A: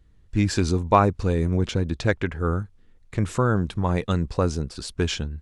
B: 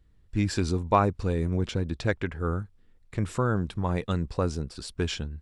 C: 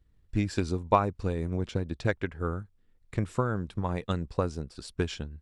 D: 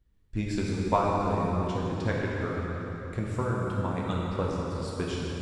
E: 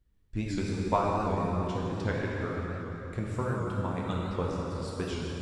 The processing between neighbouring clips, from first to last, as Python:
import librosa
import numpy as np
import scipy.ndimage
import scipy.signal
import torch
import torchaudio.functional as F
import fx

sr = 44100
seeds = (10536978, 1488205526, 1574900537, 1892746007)

y1 = fx.notch(x, sr, hz=6400.0, q=15.0)
y1 = F.gain(torch.from_numpy(y1), -4.5).numpy()
y2 = fx.transient(y1, sr, attack_db=6, sustain_db=-2)
y2 = F.gain(torch.from_numpy(y2), -5.0).numpy()
y3 = fx.rev_plate(y2, sr, seeds[0], rt60_s=3.9, hf_ratio=0.8, predelay_ms=0, drr_db=-4.0)
y3 = F.gain(torch.from_numpy(y3), -4.0).numpy()
y4 = fx.record_warp(y3, sr, rpm=78.0, depth_cents=100.0)
y4 = F.gain(torch.from_numpy(y4), -2.0).numpy()